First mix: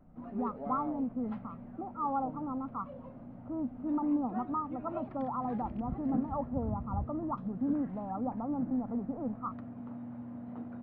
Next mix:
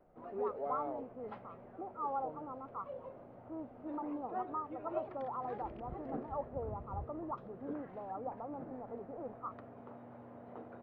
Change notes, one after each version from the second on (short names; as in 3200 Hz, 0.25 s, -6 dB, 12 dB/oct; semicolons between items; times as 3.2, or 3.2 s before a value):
speech -5.5 dB; master: add resonant low shelf 310 Hz -7.5 dB, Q 3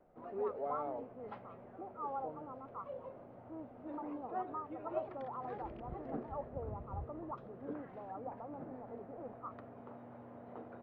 speech -3.5 dB